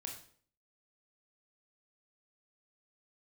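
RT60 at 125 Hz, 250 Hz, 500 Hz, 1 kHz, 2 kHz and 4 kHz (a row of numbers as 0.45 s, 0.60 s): 0.60 s, 0.60 s, 0.55 s, 0.50 s, 0.45 s, 0.45 s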